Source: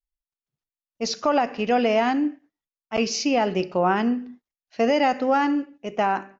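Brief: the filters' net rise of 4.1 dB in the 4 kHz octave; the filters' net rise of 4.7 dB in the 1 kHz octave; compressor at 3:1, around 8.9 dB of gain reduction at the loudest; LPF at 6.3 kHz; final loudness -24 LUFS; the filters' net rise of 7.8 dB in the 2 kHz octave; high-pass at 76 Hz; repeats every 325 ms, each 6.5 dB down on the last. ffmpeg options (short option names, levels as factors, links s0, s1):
-af "highpass=76,lowpass=6300,equalizer=f=1000:t=o:g=5,equalizer=f=2000:t=o:g=7.5,equalizer=f=4000:t=o:g=3.5,acompressor=threshold=0.0631:ratio=3,aecho=1:1:325|650|975|1300|1625|1950:0.473|0.222|0.105|0.0491|0.0231|0.0109,volume=1.33"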